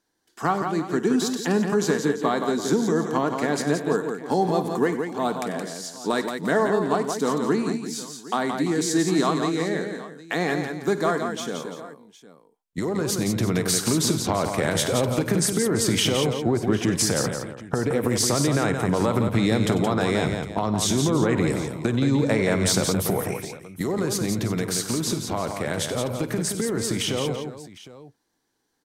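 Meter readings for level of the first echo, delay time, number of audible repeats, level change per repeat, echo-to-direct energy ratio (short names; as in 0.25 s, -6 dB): -15.5 dB, 51 ms, 5, no steady repeat, -4.5 dB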